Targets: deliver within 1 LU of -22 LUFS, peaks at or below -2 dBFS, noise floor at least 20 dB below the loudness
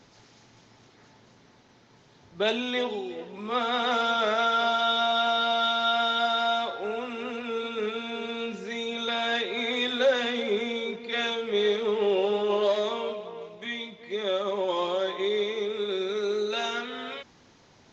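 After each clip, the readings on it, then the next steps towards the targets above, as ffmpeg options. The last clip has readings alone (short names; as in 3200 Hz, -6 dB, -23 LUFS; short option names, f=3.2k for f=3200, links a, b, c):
loudness -27.0 LUFS; peak -14.0 dBFS; loudness target -22.0 LUFS
-> -af "volume=5dB"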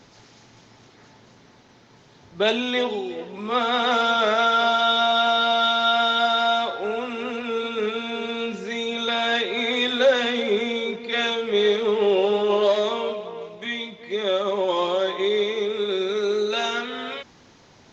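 loudness -22.0 LUFS; peak -9.0 dBFS; noise floor -52 dBFS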